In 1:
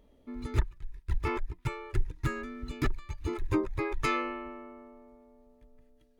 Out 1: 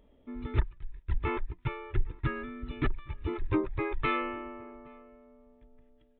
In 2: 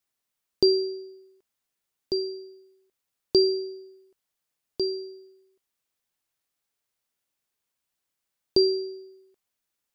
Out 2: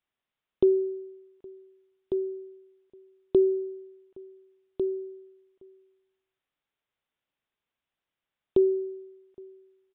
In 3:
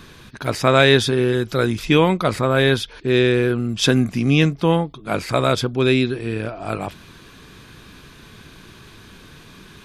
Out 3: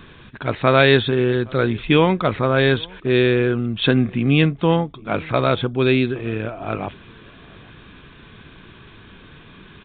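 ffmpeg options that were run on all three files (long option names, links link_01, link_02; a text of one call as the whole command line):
ffmpeg -i in.wav -filter_complex "[0:a]asplit=2[link_01][link_02];[link_02]adelay=816.3,volume=-25dB,highshelf=frequency=4000:gain=-18.4[link_03];[link_01][link_03]amix=inputs=2:normalize=0,aresample=8000,aresample=44100" out.wav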